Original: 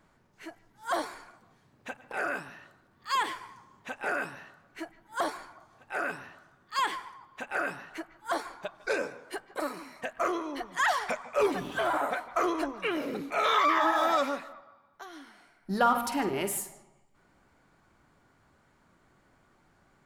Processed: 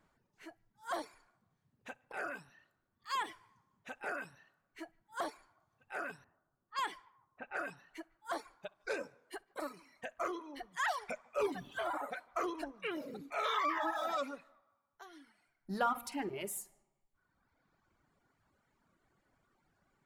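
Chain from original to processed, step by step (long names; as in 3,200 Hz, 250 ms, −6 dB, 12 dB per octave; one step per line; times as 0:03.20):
flutter between parallel walls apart 11 metres, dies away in 0.23 s
0:06.24–0:07.77: low-pass that shuts in the quiet parts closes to 860 Hz, open at −27 dBFS
reverb reduction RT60 1.5 s
level −8 dB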